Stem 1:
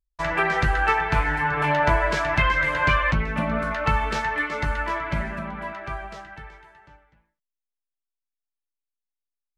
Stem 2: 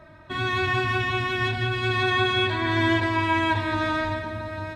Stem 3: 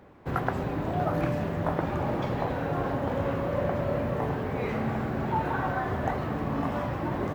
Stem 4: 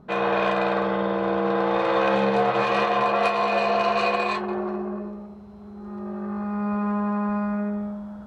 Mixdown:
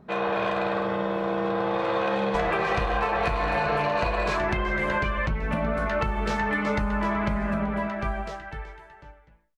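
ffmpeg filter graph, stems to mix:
ffmpeg -i stem1.wav -i stem2.wav -i stem3.wav -i stem4.wav -filter_complex "[0:a]lowshelf=frequency=61:gain=10.5,acompressor=threshold=-23dB:ratio=6,equalizer=frequency=490:width=1.4:gain=6,adelay=2150,volume=1dB[link_01];[1:a]volume=-18.5dB[link_02];[2:a]asoftclip=type=tanh:threshold=-26.5dB,volume=-12.5dB[link_03];[3:a]volume=-2.5dB[link_04];[link_01][link_02][link_03][link_04]amix=inputs=4:normalize=0,acompressor=threshold=-21dB:ratio=6" out.wav

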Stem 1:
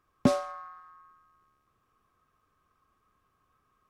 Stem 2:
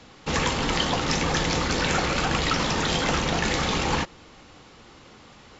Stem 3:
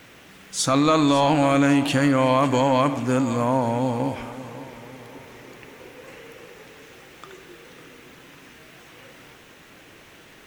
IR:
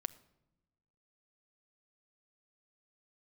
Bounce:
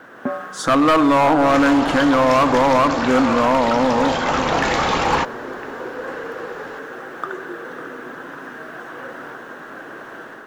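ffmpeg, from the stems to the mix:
-filter_complex "[0:a]volume=-13dB[link_01];[1:a]adelay=1200,volume=-11.5dB,asplit=2[link_02][link_03];[link_03]volume=-4dB[link_04];[2:a]asoftclip=type=hard:threshold=-13dB,volume=-4dB,asplit=2[link_05][link_06];[link_06]volume=-4.5dB[link_07];[link_01][link_05]amix=inputs=2:normalize=0,highpass=140,equalizer=frequency=240:width_type=q:width=4:gain=6,equalizer=frequency=370:width_type=q:width=4:gain=3,equalizer=frequency=900:width_type=q:width=4:gain=-5,equalizer=frequency=1600:width_type=q:width=4:gain=9,lowpass=frequency=2200:width=0.5412,lowpass=frequency=2200:width=1.3066,alimiter=limit=-14dB:level=0:latency=1:release=260,volume=0dB[link_08];[3:a]atrim=start_sample=2205[link_09];[link_04][link_07]amix=inputs=2:normalize=0[link_10];[link_10][link_09]afir=irnorm=-1:irlink=0[link_11];[link_02][link_08][link_11]amix=inputs=3:normalize=0,equalizer=frequency=950:width_type=o:width=2.5:gain=11.5,dynaudnorm=framelen=110:gausssize=5:maxgain=7dB,volume=10.5dB,asoftclip=hard,volume=-10.5dB"

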